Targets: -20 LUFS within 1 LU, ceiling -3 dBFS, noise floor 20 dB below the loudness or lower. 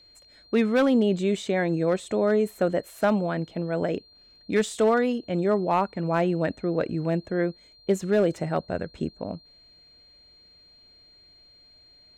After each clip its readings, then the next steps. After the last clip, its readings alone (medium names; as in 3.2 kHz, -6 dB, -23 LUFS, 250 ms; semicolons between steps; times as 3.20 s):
clipped samples 0.4%; clipping level -14.0 dBFS; steady tone 4.2 kHz; tone level -53 dBFS; loudness -25.5 LUFS; peak level -14.0 dBFS; loudness target -20.0 LUFS
-> clip repair -14 dBFS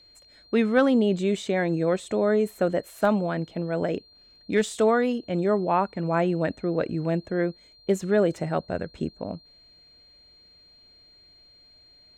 clipped samples 0.0%; steady tone 4.2 kHz; tone level -53 dBFS
-> band-stop 4.2 kHz, Q 30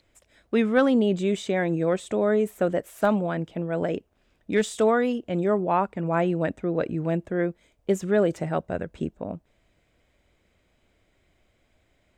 steady tone not found; loudness -25.5 LUFS; peak level -7.5 dBFS; loudness target -20.0 LUFS
-> trim +5.5 dB; peak limiter -3 dBFS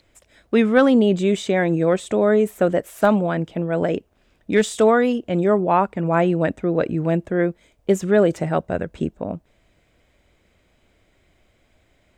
loudness -20.0 LUFS; peak level -3.0 dBFS; noise floor -62 dBFS